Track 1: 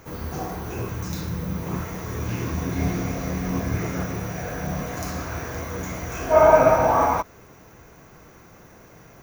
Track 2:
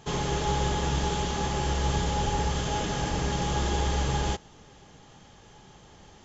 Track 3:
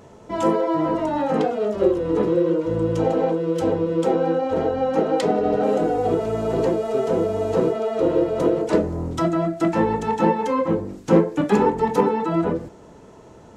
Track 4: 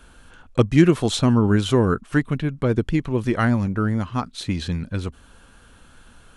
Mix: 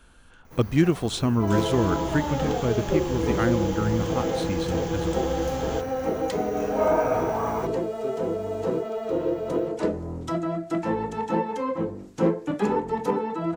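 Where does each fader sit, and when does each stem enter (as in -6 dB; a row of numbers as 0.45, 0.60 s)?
-9.5, -6.5, -6.5, -5.5 dB; 0.45, 1.45, 1.10, 0.00 s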